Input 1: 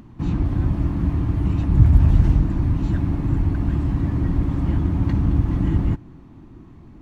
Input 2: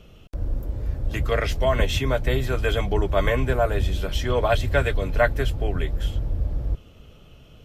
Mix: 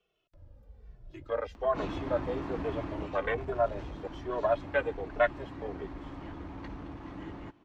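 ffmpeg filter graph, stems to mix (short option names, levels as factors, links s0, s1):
-filter_complex "[0:a]asoftclip=type=tanh:threshold=0.335,adelay=1550,volume=0.891,afade=t=out:st=2.84:d=0.37:silence=0.446684[s0];[1:a]afwtdn=0.0631,asplit=2[s1][s2];[s2]adelay=2.2,afreqshift=-1.2[s3];[s1][s3]amix=inputs=2:normalize=1,volume=0.75[s4];[s0][s4]amix=inputs=2:normalize=0,acrossover=split=350 6300:gain=0.1 1 0.126[s5][s6][s7];[s5][s6][s7]amix=inputs=3:normalize=0"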